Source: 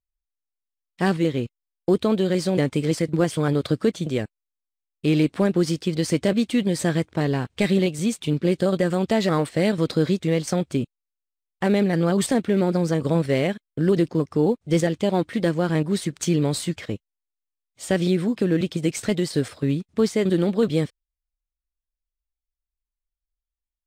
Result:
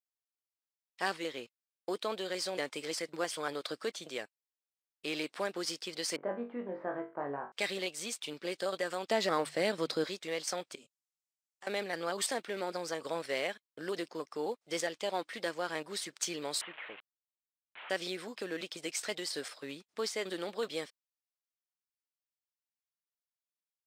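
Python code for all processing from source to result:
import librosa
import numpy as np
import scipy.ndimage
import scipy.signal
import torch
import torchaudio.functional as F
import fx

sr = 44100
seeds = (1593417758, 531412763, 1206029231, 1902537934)

y = fx.chain(x, sr, fx.lowpass(hz=1300.0, slope=24),
    fx.room_flutter(wall_m=3.6, rt60_s=0.29), at=(6.16, 7.52))
y = fx.chain(y, sr, fx.low_shelf(hz=370.0, db=11.5),
    fx.hum_notches(base_hz=50, count=3), at=(9.1, 10.04))
y = fx.chain(y, sr, fx.peak_eq(hz=7200.0, db=13.0, octaves=0.92),
    fx.level_steps(step_db=17),
    fx.detune_double(cents=13), at=(10.75, 11.67))
y = fx.chain(y, sr, fx.delta_mod(bps=16000, step_db=-32.5),
    fx.low_shelf(hz=350.0, db=-8.5), at=(16.61, 17.9))
y = scipy.signal.sosfilt(scipy.signal.butter(2, 700.0, 'highpass', fs=sr, output='sos'), y)
y = fx.peak_eq(y, sr, hz=5100.0, db=4.5, octaves=0.41)
y = F.gain(torch.from_numpy(y), -6.0).numpy()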